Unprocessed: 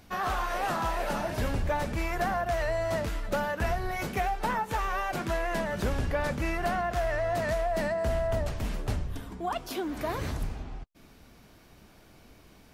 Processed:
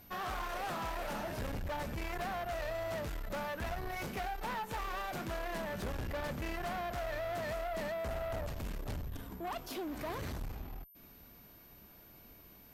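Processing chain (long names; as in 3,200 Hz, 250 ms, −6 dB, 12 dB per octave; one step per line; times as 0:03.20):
steady tone 13,000 Hz −53 dBFS
tube saturation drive 32 dB, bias 0.45
level −3 dB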